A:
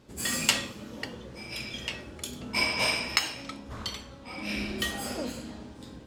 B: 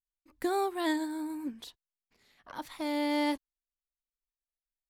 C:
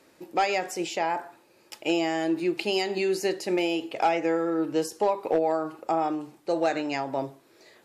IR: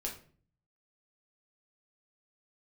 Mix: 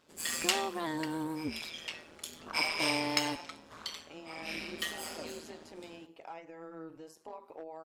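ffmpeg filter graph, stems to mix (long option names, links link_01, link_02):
-filter_complex "[0:a]highpass=frequency=630:poles=1,volume=-1.5dB[link_01];[1:a]volume=2.5dB[link_02];[2:a]alimiter=level_in=0.5dB:limit=-24dB:level=0:latency=1:release=270,volume=-0.5dB,adelay=2250,volume=-13dB[link_03];[link_02][link_03]amix=inputs=2:normalize=0,equalizer=frequency=1100:width=1.1:gain=5.5,alimiter=level_in=2dB:limit=-24dB:level=0:latency=1,volume=-2dB,volume=0dB[link_04];[link_01][link_04]amix=inputs=2:normalize=0,tremolo=f=160:d=0.71"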